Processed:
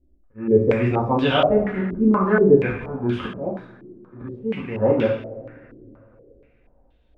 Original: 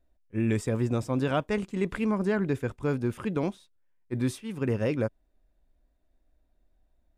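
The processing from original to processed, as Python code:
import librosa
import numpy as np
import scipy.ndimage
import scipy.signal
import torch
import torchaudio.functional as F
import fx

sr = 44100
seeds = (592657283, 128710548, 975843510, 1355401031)

y = fx.auto_swell(x, sr, attack_ms=248.0)
y = fx.rev_double_slope(y, sr, seeds[0], early_s=0.59, late_s=3.3, knee_db=-21, drr_db=-5.0)
y = fx.filter_held_lowpass(y, sr, hz=4.2, low_hz=330.0, high_hz=3300.0)
y = y * librosa.db_to_amplitude(1.5)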